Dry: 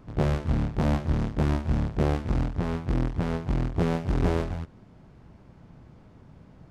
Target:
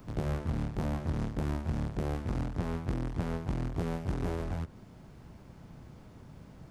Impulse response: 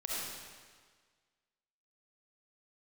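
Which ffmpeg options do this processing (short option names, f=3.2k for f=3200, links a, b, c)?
-filter_complex "[0:a]alimiter=limit=-17dB:level=0:latency=1:release=116,acrossover=split=90|2100[a][b][c];[a]acompressor=threshold=-36dB:ratio=4[d];[b]acompressor=threshold=-32dB:ratio=4[e];[c]acompressor=threshold=-58dB:ratio=4[f];[d][e][f]amix=inputs=3:normalize=0,aemphasis=mode=production:type=50kf"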